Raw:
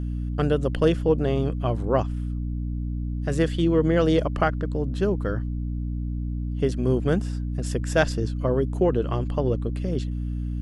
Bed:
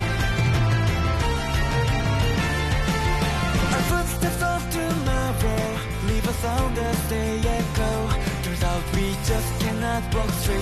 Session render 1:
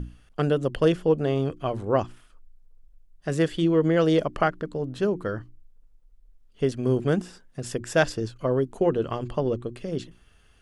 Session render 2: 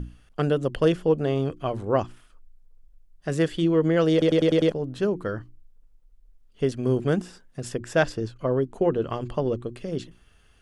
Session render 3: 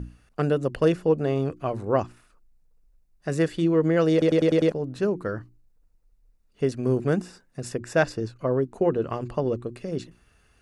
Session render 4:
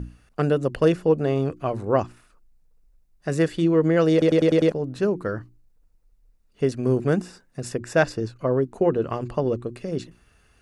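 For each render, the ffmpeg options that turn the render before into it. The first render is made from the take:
-af "bandreject=f=60:t=h:w=6,bandreject=f=120:t=h:w=6,bandreject=f=180:t=h:w=6,bandreject=f=240:t=h:w=6,bandreject=f=300:t=h:w=6,bandreject=f=360:t=h:w=6"
-filter_complex "[0:a]asettb=1/sr,asplit=3[a][b][c];[a]atrim=end=7.694[d];[b]atrim=start=7.69:end=9.09,asetpts=PTS-STARTPTS,afade=t=in:d=0.004:c=qsin,afade=t=out:st=1.396:d=0.004:c=qsin,highshelf=f=4.4k:g=-6.5[e];[c]atrim=start=9.086[f];[d][e]acrossfade=d=0.004:c1=hsin:c2=qsin[g];[g][f]acrossfade=d=0.004:c1=qsin:c2=hsin,asplit=7[h][i][j][k][l][m][n];[h]atrim=end=4.222[o];[i]atrim=start=4.118:end=4.222[p];[j]atrim=start=4.118:end=4.222[q];[k]atrim=start=4.118:end=4.222[r];[l]atrim=start=4.118:end=4.222[s];[m]atrim=start=4.118:end=4.222[t];[n]atrim=start=4.718[u];[o][p]acrossfade=d=0.004:c1=hsin:c2=hsin[v];[v][q]acrossfade=d=0.004:c1=hsin:c2=hsin[w];[w][r]acrossfade=d=0.004:c1=hsin:c2=hsin[x];[x][s]acrossfade=d=0.004:c1=hsin:c2=hsin[y];[y][t]acrossfade=d=0.004:c1=hsin:c2=hsin[z];[z][u]acrossfade=d=0.004:c1=hsin:c2=hsin"
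-af "highpass=f=43:p=1,bandreject=f=3.2k:w=5.2"
-af "volume=2dB"

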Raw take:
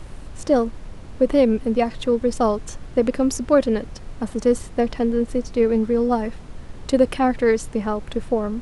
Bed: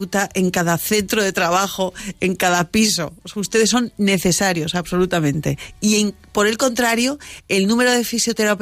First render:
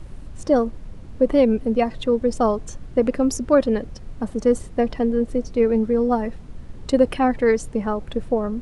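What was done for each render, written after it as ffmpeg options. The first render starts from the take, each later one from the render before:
-af "afftdn=nr=7:nf=-38"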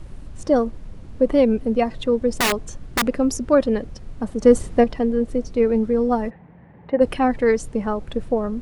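-filter_complex "[0:a]asettb=1/sr,asplit=3[a][b][c];[a]atrim=end=2.324[d];[b]atrim=start=2.32:end=3.05,asetpts=PTS-STARTPTS,afade=t=in:d=0.004:c=qsin,afade=t=out:st=0.726:d=0.004:c=qsin,aeval=exprs='(mod(4.73*val(0)+1,2)-1)/4.73':c=same[e];[c]atrim=start=3.046[f];[d][e]acrossfade=d=0.004:c1=hsin:c2=qsin[g];[g][f]acrossfade=d=0.004:c1=qsin:c2=hsin,asplit=3[h][i][j];[h]afade=t=out:st=6.29:d=0.02[k];[i]highpass=160,equalizer=f=170:t=q:w=4:g=6,equalizer=f=250:t=q:w=4:g=-7,equalizer=f=370:t=q:w=4:g=-5,equalizer=f=840:t=q:w=4:g=7,equalizer=f=1.3k:t=q:w=4:g=-8,equalizer=f=1.9k:t=q:w=4:g=6,lowpass=f=2.1k:w=0.5412,lowpass=f=2.1k:w=1.3066,afade=t=in:st=6.29:d=0.02,afade=t=out:st=7:d=0.02[l];[j]afade=t=in:st=7:d=0.02[m];[k][l][m]amix=inputs=3:normalize=0,asplit=3[n][o][p];[n]atrim=end=4.432[q];[o]atrim=start=4.428:end=4.842,asetpts=PTS-STARTPTS,volume=5dB[r];[p]atrim=start=4.838[s];[q][r]acrossfade=d=0.004:c1=hsin:c2=hsin[t];[t][s]acrossfade=d=0.004:c1=hsin:c2=hsin"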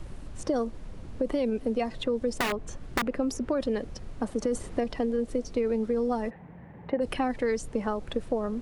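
-filter_complex "[0:a]alimiter=limit=-12.5dB:level=0:latency=1:release=22,acrossover=split=270|3200[a][b][c];[a]acompressor=threshold=-36dB:ratio=4[d];[b]acompressor=threshold=-27dB:ratio=4[e];[c]acompressor=threshold=-41dB:ratio=4[f];[d][e][f]amix=inputs=3:normalize=0"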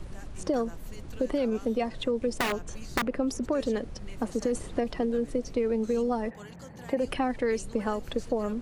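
-filter_complex "[1:a]volume=-32dB[a];[0:a][a]amix=inputs=2:normalize=0"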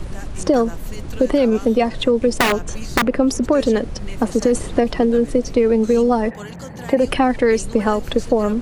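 -af "volume=12dB,alimiter=limit=-1dB:level=0:latency=1"

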